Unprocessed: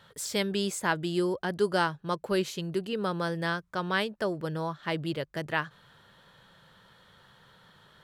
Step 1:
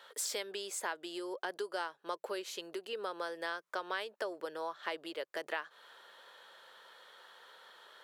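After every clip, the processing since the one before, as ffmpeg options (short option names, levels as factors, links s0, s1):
-af "acompressor=threshold=0.0178:ratio=10,highpass=f=400:w=0.5412,highpass=f=400:w=1.3066,volume=1.26"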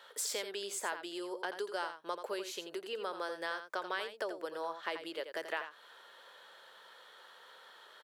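-af "aecho=1:1:85:0.335"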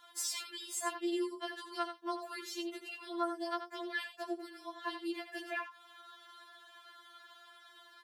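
-af "afftfilt=real='re*4*eq(mod(b,16),0)':imag='im*4*eq(mod(b,16),0)':win_size=2048:overlap=0.75,volume=1.33"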